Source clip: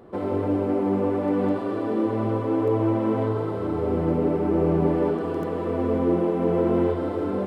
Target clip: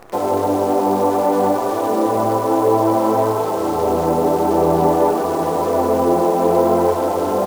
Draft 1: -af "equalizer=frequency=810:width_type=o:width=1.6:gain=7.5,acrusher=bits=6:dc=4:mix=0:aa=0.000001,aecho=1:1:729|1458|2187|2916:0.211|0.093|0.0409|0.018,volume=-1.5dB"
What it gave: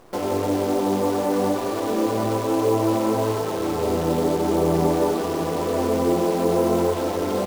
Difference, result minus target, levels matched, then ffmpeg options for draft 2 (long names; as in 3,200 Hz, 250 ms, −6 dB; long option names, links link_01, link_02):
1,000 Hz band −4.0 dB
-af "equalizer=frequency=810:width_type=o:width=1.6:gain=17.5,acrusher=bits=6:dc=4:mix=0:aa=0.000001,aecho=1:1:729|1458|2187|2916:0.211|0.093|0.0409|0.018,volume=-1.5dB"